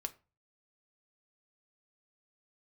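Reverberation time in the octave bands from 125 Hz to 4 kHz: 0.60, 0.35, 0.30, 0.30, 0.30, 0.25 seconds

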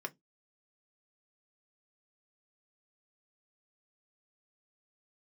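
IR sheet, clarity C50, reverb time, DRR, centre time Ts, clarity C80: 28.5 dB, 0.15 s, 3.5 dB, 4 ms, 39.5 dB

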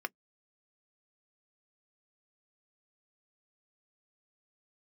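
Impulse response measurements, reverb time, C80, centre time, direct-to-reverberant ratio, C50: non-exponential decay, 60.0 dB, 2 ms, 10.0 dB, 48.0 dB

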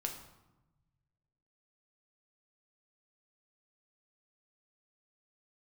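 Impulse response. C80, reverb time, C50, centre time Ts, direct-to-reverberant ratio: 10.0 dB, 1.0 s, 7.5 dB, 23 ms, 2.0 dB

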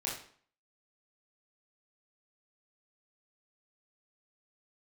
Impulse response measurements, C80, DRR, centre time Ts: 9.0 dB, −5.0 dB, 39 ms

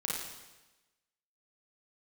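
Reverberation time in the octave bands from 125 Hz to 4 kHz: 1.1, 1.1, 1.1, 1.1, 1.1, 1.1 seconds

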